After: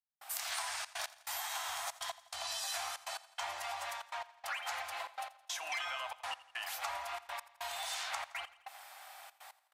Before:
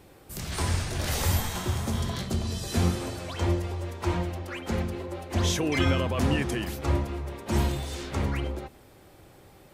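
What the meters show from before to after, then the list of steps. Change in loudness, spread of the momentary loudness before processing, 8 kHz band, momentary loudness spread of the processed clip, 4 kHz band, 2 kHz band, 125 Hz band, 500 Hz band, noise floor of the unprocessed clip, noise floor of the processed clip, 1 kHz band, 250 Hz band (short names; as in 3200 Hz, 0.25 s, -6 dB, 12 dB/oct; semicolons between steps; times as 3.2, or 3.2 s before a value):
-11.0 dB, 9 LU, -5.0 dB, 11 LU, -5.0 dB, -4.5 dB, under -40 dB, -17.0 dB, -53 dBFS, -69 dBFS, -4.0 dB, under -40 dB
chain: elliptic high-pass 700 Hz, stop band 40 dB; compressor 10:1, threshold -43 dBFS, peak gain reduction 16.5 dB; step gate "..xxxxxx.x" 142 bpm -60 dB; feedback echo 84 ms, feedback 55%, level -18 dB; gain +7 dB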